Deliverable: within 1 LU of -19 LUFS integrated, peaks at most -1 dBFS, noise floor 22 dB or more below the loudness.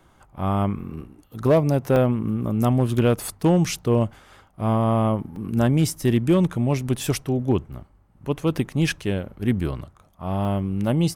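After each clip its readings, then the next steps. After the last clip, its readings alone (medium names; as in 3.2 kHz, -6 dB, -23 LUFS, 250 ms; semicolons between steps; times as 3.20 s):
clipped samples 0.3%; clipping level -10.5 dBFS; dropouts 4; longest dropout 2.3 ms; loudness -22.5 LUFS; peak level -10.5 dBFS; loudness target -19.0 LUFS
-> clip repair -10.5 dBFS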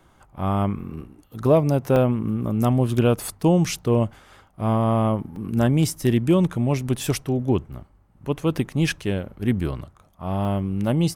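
clipped samples 0.0%; dropouts 4; longest dropout 2.3 ms
-> interpolate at 1.43/1.96/5.36/10.45 s, 2.3 ms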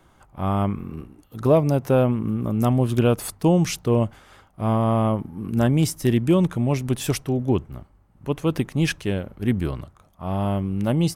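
dropouts 0; loudness -22.5 LUFS; peak level -6.0 dBFS; loudness target -19.0 LUFS
-> trim +3.5 dB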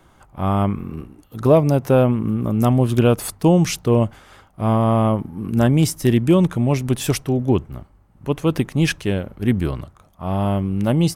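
loudness -19.0 LUFS; peak level -2.5 dBFS; noise floor -53 dBFS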